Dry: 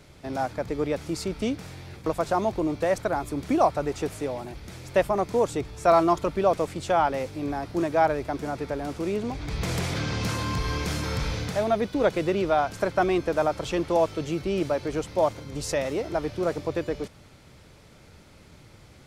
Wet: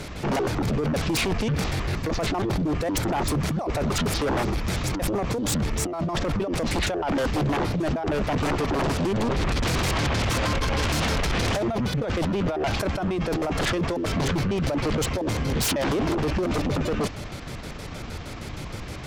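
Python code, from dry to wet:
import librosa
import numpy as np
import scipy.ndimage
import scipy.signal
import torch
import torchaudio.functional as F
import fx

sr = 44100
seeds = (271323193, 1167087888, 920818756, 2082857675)

y = fx.pitch_trill(x, sr, semitones=-11.5, every_ms=78)
y = fx.over_compress(y, sr, threshold_db=-32.0, ratio=-1.0)
y = fx.fold_sine(y, sr, drive_db=12, ceiling_db=-16.5)
y = y * librosa.db_to_amplitude(-4.0)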